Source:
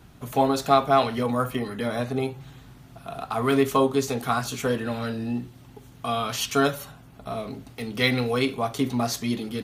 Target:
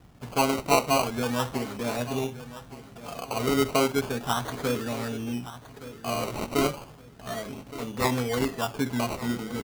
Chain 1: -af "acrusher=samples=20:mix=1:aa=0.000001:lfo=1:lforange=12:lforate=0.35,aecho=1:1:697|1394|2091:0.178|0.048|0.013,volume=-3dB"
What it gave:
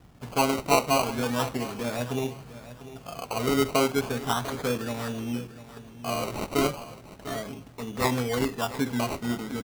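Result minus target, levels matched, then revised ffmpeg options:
echo 0.472 s early
-af "acrusher=samples=20:mix=1:aa=0.000001:lfo=1:lforange=12:lforate=0.35,aecho=1:1:1169|2338|3507:0.178|0.048|0.013,volume=-3dB"

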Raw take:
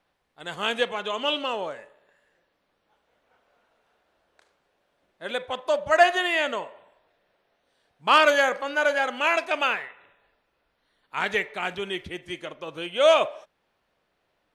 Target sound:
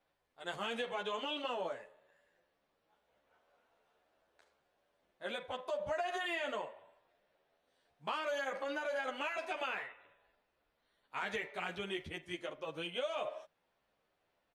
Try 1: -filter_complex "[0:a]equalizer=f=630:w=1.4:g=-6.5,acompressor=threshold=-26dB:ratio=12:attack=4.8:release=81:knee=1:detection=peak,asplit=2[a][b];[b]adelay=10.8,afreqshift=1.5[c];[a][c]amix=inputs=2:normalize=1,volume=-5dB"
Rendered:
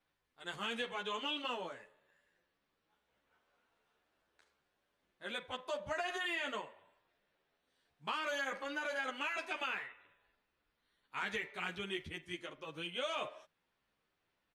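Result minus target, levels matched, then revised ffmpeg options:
500 Hz band -4.0 dB
-filter_complex "[0:a]equalizer=f=630:w=1.4:g=2.5,acompressor=threshold=-26dB:ratio=12:attack=4.8:release=81:knee=1:detection=peak,asplit=2[a][b];[b]adelay=10.8,afreqshift=1.5[c];[a][c]amix=inputs=2:normalize=1,volume=-5dB"

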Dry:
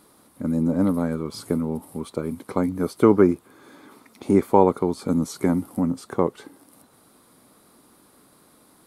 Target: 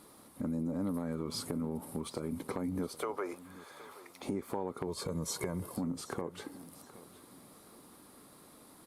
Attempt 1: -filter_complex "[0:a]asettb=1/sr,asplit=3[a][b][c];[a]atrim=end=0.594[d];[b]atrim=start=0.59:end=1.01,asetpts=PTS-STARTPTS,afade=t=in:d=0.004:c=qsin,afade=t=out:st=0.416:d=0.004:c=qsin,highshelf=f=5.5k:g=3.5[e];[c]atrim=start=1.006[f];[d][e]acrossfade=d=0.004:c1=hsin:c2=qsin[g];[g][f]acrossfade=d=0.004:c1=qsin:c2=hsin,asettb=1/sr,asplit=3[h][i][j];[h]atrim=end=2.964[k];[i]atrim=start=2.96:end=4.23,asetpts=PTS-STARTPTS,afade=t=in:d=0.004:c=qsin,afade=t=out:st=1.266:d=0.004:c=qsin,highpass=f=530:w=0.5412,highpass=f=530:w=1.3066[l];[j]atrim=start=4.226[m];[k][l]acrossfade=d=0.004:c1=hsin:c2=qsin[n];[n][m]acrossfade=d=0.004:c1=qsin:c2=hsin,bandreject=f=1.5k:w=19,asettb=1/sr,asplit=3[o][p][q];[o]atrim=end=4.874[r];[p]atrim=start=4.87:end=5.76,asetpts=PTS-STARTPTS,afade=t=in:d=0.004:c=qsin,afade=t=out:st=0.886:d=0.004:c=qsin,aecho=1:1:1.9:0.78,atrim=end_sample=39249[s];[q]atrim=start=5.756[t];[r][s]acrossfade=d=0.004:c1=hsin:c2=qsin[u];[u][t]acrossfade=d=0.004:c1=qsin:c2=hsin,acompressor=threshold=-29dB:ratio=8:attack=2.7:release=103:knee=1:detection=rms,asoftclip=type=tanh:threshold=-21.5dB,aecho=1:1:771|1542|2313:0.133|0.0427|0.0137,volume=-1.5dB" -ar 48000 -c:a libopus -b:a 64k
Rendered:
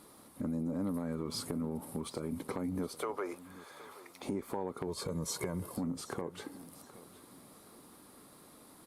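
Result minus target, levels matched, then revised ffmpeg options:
soft clip: distortion +13 dB
-filter_complex "[0:a]asettb=1/sr,asplit=3[a][b][c];[a]atrim=end=0.594[d];[b]atrim=start=0.59:end=1.01,asetpts=PTS-STARTPTS,afade=t=in:d=0.004:c=qsin,afade=t=out:st=0.416:d=0.004:c=qsin,highshelf=f=5.5k:g=3.5[e];[c]atrim=start=1.006[f];[d][e]acrossfade=d=0.004:c1=hsin:c2=qsin[g];[g][f]acrossfade=d=0.004:c1=qsin:c2=hsin,asettb=1/sr,asplit=3[h][i][j];[h]atrim=end=2.964[k];[i]atrim=start=2.96:end=4.23,asetpts=PTS-STARTPTS,afade=t=in:d=0.004:c=qsin,afade=t=out:st=1.266:d=0.004:c=qsin,highpass=f=530:w=0.5412,highpass=f=530:w=1.3066[l];[j]atrim=start=4.226[m];[k][l]acrossfade=d=0.004:c1=hsin:c2=qsin[n];[n][m]acrossfade=d=0.004:c1=qsin:c2=hsin,bandreject=f=1.5k:w=19,asettb=1/sr,asplit=3[o][p][q];[o]atrim=end=4.874[r];[p]atrim=start=4.87:end=5.76,asetpts=PTS-STARTPTS,afade=t=in:d=0.004:c=qsin,afade=t=out:st=0.886:d=0.004:c=qsin,aecho=1:1:1.9:0.78,atrim=end_sample=39249[s];[q]atrim=start=5.756[t];[r][s]acrossfade=d=0.004:c1=hsin:c2=qsin[u];[u][t]acrossfade=d=0.004:c1=qsin:c2=hsin,acompressor=threshold=-29dB:ratio=8:attack=2.7:release=103:knee=1:detection=rms,asoftclip=type=tanh:threshold=-14.5dB,aecho=1:1:771|1542|2313:0.133|0.0427|0.0137,volume=-1.5dB" -ar 48000 -c:a libopus -b:a 64k

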